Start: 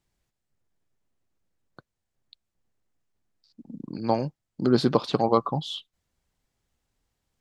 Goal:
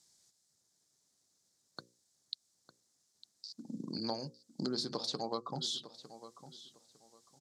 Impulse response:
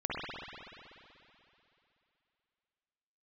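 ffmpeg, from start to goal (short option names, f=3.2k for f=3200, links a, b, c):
-filter_complex "[0:a]aexciter=amount=12:drive=5.3:freq=4.1k,acompressor=threshold=-34dB:ratio=6,highpass=140,lowpass=6.1k,bandreject=f=60:t=h:w=6,bandreject=f=120:t=h:w=6,bandreject=f=180:t=h:w=6,bandreject=f=240:t=h:w=6,bandreject=f=300:t=h:w=6,bandreject=f=360:t=h:w=6,bandreject=f=420:t=h:w=6,bandreject=f=480:t=h:w=6,bandreject=f=540:t=h:w=6,asplit=2[a][b];[b]adelay=904,lowpass=f=4.3k:p=1,volume=-14dB,asplit=2[c][d];[d]adelay=904,lowpass=f=4.3k:p=1,volume=0.23,asplit=2[e][f];[f]adelay=904,lowpass=f=4.3k:p=1,volume=0.23[g];[a][c][e][g]amix=inputs=4:normalize=0"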